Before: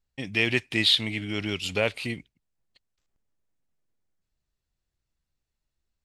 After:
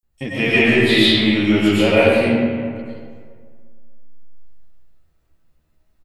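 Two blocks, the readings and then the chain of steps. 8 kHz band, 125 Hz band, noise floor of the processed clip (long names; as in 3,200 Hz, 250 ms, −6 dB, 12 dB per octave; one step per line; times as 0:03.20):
+5.0 dB, +11.5 dB, −65 dBFS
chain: double-tracking delay 13 ms −4.5 dB
multiband delay without the direct sound highs, lows 30 ms, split 5,800 Hz
comb and all-pass reverb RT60 1.8 s, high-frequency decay 0.55×, pre-delay 75 ms, DRR −9.5 dB
in parallel at −1 dB: downward compressor, threshold −31 dBFS, peak gain reduction 20 dB
on the sum: parametric band 4,600 Hz −7.5 dB 2.8 octaves
level +3.5 dB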